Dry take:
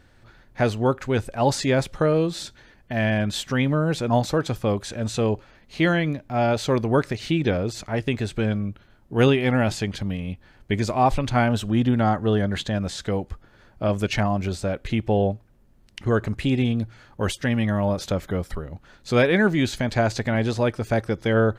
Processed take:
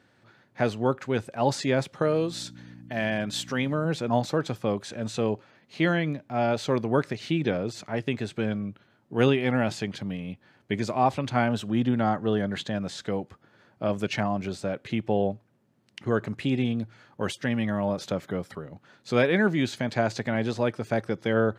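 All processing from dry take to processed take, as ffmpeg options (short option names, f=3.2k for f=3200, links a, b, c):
-filter_complex "[0:a]asettb=1/sr,asplit=3[a][b][c];[a]atrim=end=2.024[d];[b]atrim=start=2.02:end=3.85,asetpts=PTS-STARTPTS,afade=t=in:d=0.004:c=qsin,afade=t=out:st=1.826:d=0.004:c=qsin,bass=f=250:g=-4,treble=f=4k:g=5,aeval=exprs='val(0)+0.0178*(sin(2*PI*60*n/s)+sin(2*PI*2*60*n/s)/2+sin(2*PI*3*60*n/s)/3+sin(2*PI*4*60*n/s)/4+sin(2*PI*5*60*n/s)/5)':c=same[e];[c]atrim=start=3.846[f];[d][e]acrossfade=d=0.004:c1=hsin:c2=qsin[g];[g][f]acrossfade=d=0.004:c1=qsin:c2=hsin,highpass=f=120:w=0.5412,highpass=f=120:w=1.3066,highshelf=f=9.1k:g=-8,volume=-3.5dB"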